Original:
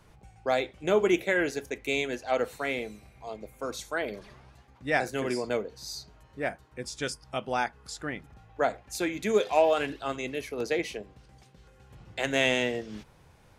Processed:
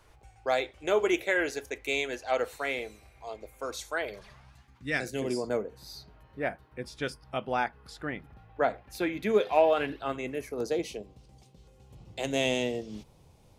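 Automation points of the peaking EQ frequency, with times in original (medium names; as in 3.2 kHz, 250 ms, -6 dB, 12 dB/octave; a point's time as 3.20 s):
peaking EQ -14 dB 0.97 oct
3.91 s 180 Hz
5.03 s 860 Hz
5.90 s 7.2 kHz
10.01 s 7.2 kHz
10.90 s 1.6 kHz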